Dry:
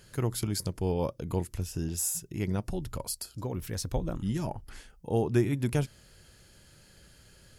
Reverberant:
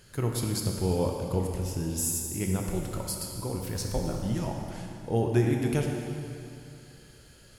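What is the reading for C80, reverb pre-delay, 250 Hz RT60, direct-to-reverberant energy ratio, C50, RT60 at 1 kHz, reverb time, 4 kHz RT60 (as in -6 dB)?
3.5 dB, 7 ms, 2.6 s, 1.0 dB, 2.0 dB, 2.7 s, 2.7 s, 2.5 s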